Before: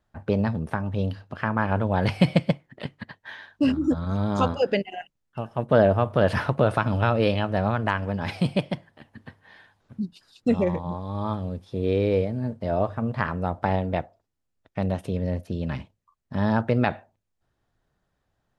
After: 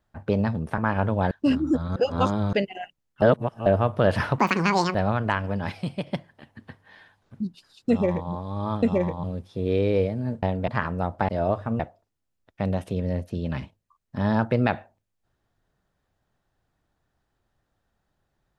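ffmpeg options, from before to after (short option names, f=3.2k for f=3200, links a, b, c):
-filter_complex "[0:a]asplit=17[a][b][c][d][e][f][g][h][i][j][k][l][m][n][o][p][q];[a]atrim=end=0.782[r];[b]atrim=start=1.508:end=2.042[s];[c]atrim=start=3.478:end=4.132[t];[d]atrim=start=4.128:end=4.702,asetpts=PTS-STARTPTS,areverse[u];[e]atrim=start=4.698:end=5.392[v];[f]atrim=start=5.388:end=5.832,asetpts=PTS-STARTPTS,areverse[w];[g]atrim=start=5.828:end=6.554[x];[h]atrim=start=6.55:end=7.53,asetpts=PTS-STARTPTS,asetrate=76293,aresample=44100[y];[i]atrim=start=7.526:end=8.282[z];[j]atrim=start=8.278:end=8.652,asetpts=PTS-STARTPTS,volume=-6.5dB[aa];[k]atrim=start=8.648:end=11.412[ab];[l]atrim=start=10.488:end=10.902[ac];[m]atrim=start=11.408:end=12.602[ad];[n]atrim=start=13.718:end=13.972[ae];[o]atrim=start=13.108:end=13.722[af];[p]atrim=start=12.598:end=13.112[ag];[q]atrim=start=13.968[ah];[r][s]acrossfade=d=0.004:c1=hsin:c2=hsin[ai];[ai][t]acrossfade=d=0.004:c1=hsin:c2=hsin[aj];[aj][u]acrossfade=d=0.004:c1=hsin:c2=hsin[ak];[ak][v]acrossfade=d=0.004:c1=hsin:c2=hsin[al];[al][w]acrossfade=d=0.004:c1=hsin:c2=hsin[am];[am][x]acrossfade=d=0.004:c1=hsin:c2=hsin[an];[an][y]acrossfade=d=0.004:c1=hsin:c2=hsin[ao];[ao][z]acrossfade=d=0.004:c1=hsin:c2=hsin[ap];[ap][aa]acrossfade=d=0.004:c1=hsin:c2=hsin[aq];[aq][ab]acrossfade=d=0.004:c1=hsin:c2=hsin[ar];[ar][ac]acrossfade=d=0.004:c1=hsin:c2=hsin[as];[as][ad]acrossfade=d=0.004:c1=hsin:c2=hsin[at];[at][ae]acrossfade=d=0.004:c1=hsin:c2=hsin[au];[au][af]acrossfade=d=0.004:c1=hsin:c2=hsin[av];[av][ag]acrossfade=d=0.004:c1=hsin:c2=hsin[aw];[aw][ah]acrossfade=d=0.004:c1=hsin:c2=hsin"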